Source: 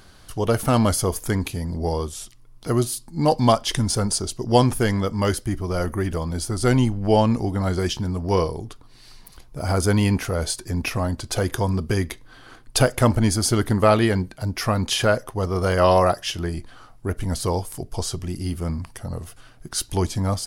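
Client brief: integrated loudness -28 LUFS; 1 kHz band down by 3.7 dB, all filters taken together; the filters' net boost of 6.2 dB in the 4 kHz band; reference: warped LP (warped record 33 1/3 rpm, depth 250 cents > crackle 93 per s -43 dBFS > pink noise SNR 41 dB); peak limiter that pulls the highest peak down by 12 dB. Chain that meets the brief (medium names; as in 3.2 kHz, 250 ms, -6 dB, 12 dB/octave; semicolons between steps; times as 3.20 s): peaking EQ 1 kHz -5.5 dB; peaking EQ 4 kHz +8.5 dB; peak limiter -14.5 dBFS; warped record 33 1/3 rpm, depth 250 cents; crackle 93 per s -43 dBFS; pink noise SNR 41 dB; trim -2.5 dB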